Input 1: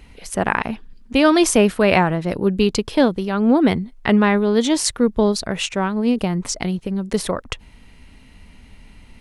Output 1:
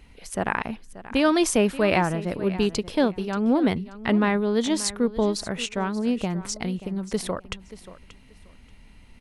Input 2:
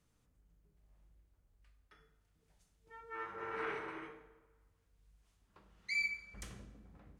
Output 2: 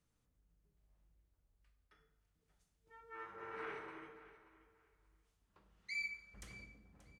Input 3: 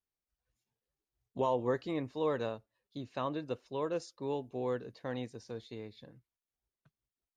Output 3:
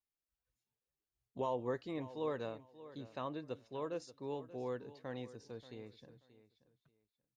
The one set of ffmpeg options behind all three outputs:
-af "aecho=1:1:582|1164:0.158|0.0333,volume=-6dB"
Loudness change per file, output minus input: -6.0, -6.0, -6.0 LU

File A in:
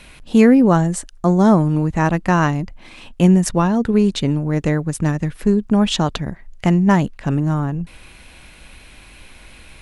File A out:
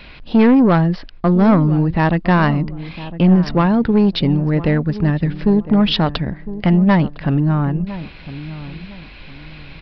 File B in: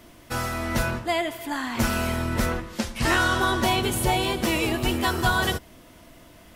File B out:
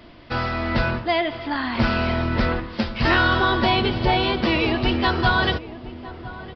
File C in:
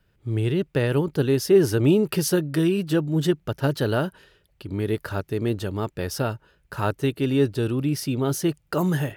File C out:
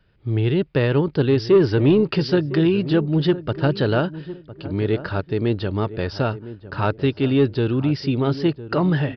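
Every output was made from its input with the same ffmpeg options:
-filter_complex "[0:a]aresample=11025,asoftclip=type=tanh:threshold=-11dB,aresample=44100,asplit=2[a][b];[b]adelay=1007,lowpass=f=940:p=1,volume=-14dB,asplit=2[c][d];[d]adelay=1007,lowpass=f=940:p=1,volume=0.31,asplit=2[e][f];[f]adelay=1007,lowpass=f=940:p=1,volume=0.31[g];[a][c][e][g]amix=inputs=4:normalize=0,volume=4dB"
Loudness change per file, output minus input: +1.0, +3.5, +3.0 LU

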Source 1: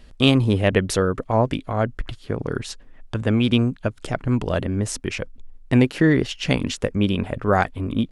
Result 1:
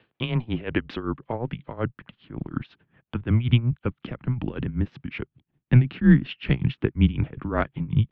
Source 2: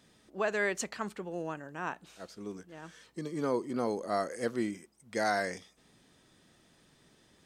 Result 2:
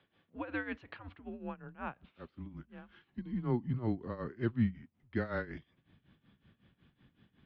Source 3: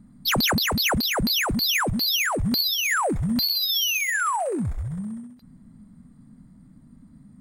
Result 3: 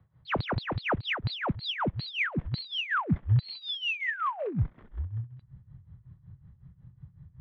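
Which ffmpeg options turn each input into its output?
-af "tremolo=f=5.4:d=0.83,highpass=f=270:t=q:w=0.5412,highpass=f=270:t=q:w=1.307,lowpass=f=3.5k:t=q:w=0.5176,lowpass=f=3.5k:t=q:w=0.7071,lowpass=f=3.5k:t=q:w=1.932,afreqshift=-120,asubboost=boost=6:cutoff=210,volume=-2dB"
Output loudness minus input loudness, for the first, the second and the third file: -3.5, -4.0, -9.0 LU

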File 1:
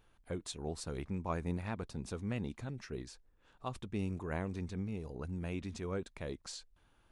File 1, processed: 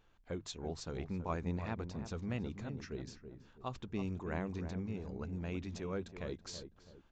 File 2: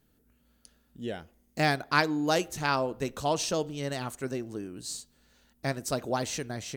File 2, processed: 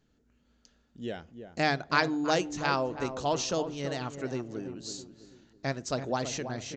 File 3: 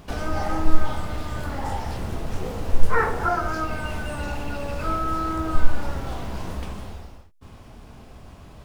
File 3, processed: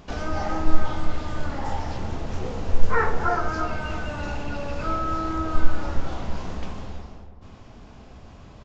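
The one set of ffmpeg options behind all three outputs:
-filter_complex "[0:a]bandreject=f=50:t=h:w=6,bandreject=f=100:t=h:w=6,bandreject=f=150:t=h:w=6,asplit=2[a][b];[b]adelay=328,lowpass=f=1.1k:p=1,volume=-8.5dB,asplit=2[c][d];[d]adelay=328,lowpass=f=1.1k:p=1,volume=0.4,asplit=2[e][f];[f]adelay=328,lowpass=f=1.1k:p=1,volume=0.4,asplit=2[g][h];[h]adelay=328,lowpass=f=1.1k:p=1,volume=0.4[i];[a][c][e][g][i]amix=inputs=5:normalize=0,aresample=16000,aresample=44100,volume=-1dB"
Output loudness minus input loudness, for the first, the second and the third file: -1.0, -1.0, -1.0 LU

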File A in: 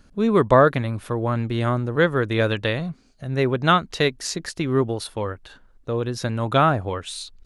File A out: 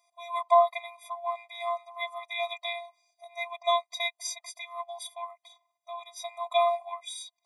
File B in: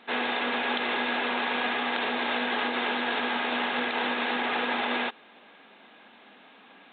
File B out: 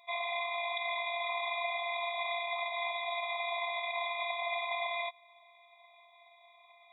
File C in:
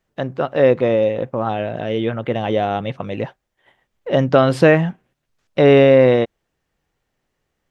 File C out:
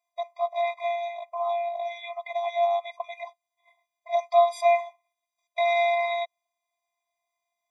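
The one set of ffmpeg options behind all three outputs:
-af "afftfilt=real='hypot(re,im)*cos(PI*b)':imag='0':win_size=512:overlap=0.75,afftfilt=real='re*eq(mod(floor(b*sr/1024/640),2),1)':imag='im*eq(mod(floor(b*sr/1024/640),2),1)':win_size=1024:overlap=0.75"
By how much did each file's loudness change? -8.5, -7.0, -9.5 LU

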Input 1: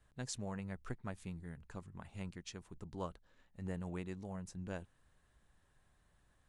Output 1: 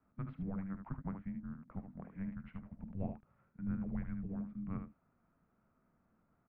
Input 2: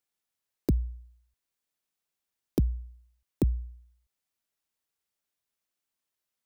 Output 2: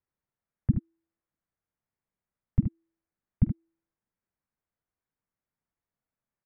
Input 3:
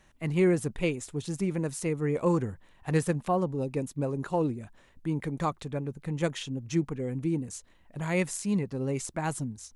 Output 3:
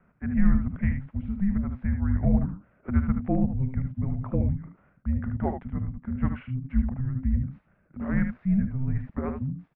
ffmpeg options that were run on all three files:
-af "aemphasis=mode=reproduction:type=riaa,aecho=1:1:47|75:0.133|0.422,highpass=f=200:t=q:w=0.5412,highpass=f=200:t=q:w=1.307,lowpass=f=2.6k:t=q:w=0.5176,lowpass=f=2.6k:t=q:w=0.7071,lowpass=f=2.6k:t=q:w=1.932,afreqshift=-390"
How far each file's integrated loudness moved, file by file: +2.5, +1.0, +2.0 LU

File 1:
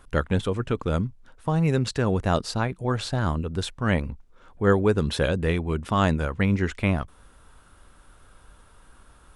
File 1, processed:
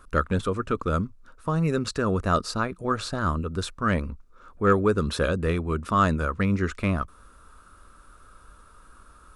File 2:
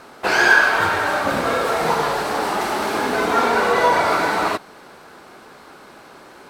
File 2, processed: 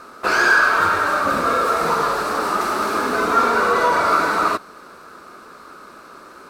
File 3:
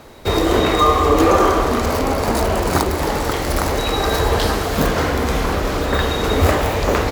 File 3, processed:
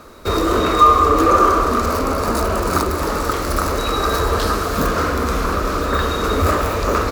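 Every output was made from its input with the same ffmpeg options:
-af "acontrast=71,equalizer=f=125:t=o:w=0.33:g=-10,equalizer=f=800:t=o:w=0.33:g=-8,equalizer=f=1.25k:t=o:w=0.33:g=10,equalizer=f=2k:t=o:w=0.33:g=-5,equalizer=f=3.15k:t=o:w=0.33:g=-6,volume=-6.5dB"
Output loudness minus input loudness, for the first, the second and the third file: -0.5, +0.5, +0.5 LU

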